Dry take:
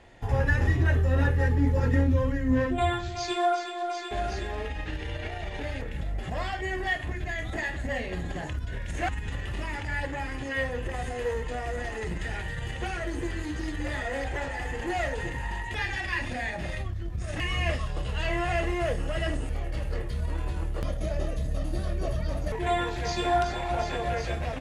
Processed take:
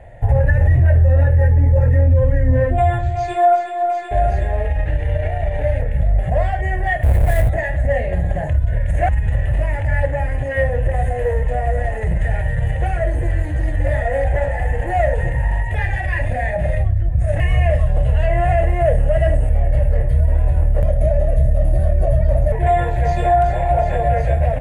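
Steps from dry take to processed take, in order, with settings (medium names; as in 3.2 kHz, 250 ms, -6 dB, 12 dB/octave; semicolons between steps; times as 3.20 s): 7.03–7.49 s: square wave that keeps the level; FFT filter 130 Hz 0 dB, 260 Hz -16 dB, 390 Hz -15 dB, 600 Hz +2 dB, 1.2 kHz -20 dB, 1.8 kHz -9 dB, 3.3 kHz -22 dB, 5.3 kHz -29 dB, 9.3 kHz -12 dB; loudness maximiser +22 dB; trim -5.5 dB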